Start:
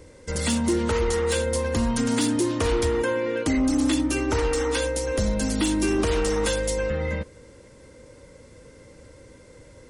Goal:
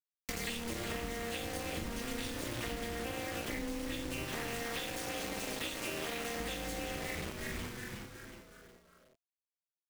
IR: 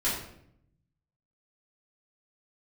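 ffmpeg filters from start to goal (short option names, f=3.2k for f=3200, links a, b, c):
-filter_complex "[0:a]equalizer=f=2.3k:t=o:w=2:g=12,bandreject=f=1.1k:w=19[a];[1:a]atrim=start_sample=2205,asetrate=83790,aresample=44100[b];[a][b]afir=irnorm=-1:irlink=0,tremolo=f=240:d=0.974,asettb=1/sr,asplit=3[c][d][e];[c]atrim=end=4.244[f];[d]atrim=start=4.24:end=6.39,asetpts=PTS-STARTPTS,afade=t=in:d=0.004:c=qsin,afade=t=out:st=2.146:d=0.004:c=qsin,highpass=f=360:p=1[g];[e]atrim=start=6.386[h];[f][g]acrossfade=d=0.004:c1=hsin:c2=qsin[i];[i][h]acrossfade=d=0.004:c1=qsin:c2=hsin,acrusher=bits=3:mix=0:aa=0.000001,asplit=6[j][k][l][m][n][o];[k]adelay=366,afreqshift=-140,volume=-10dB[p];[l]adelay=732,afreqshift=-280,volume=-16.2dB[q];[m]adelay=1098,afreqshift=-420,volume=-22.4dB[r];[n]adelay=1464,afreqshift=-560,volume=-28.6dB[s];[o]adelay=1830,afreqshift=-700,volume=-34.8dB[t];[j][p][q][r][s][t]amix=inputs=6:normalize=0,acompressor=threshold=-28dB:ratio=12,volume=-6.5dB"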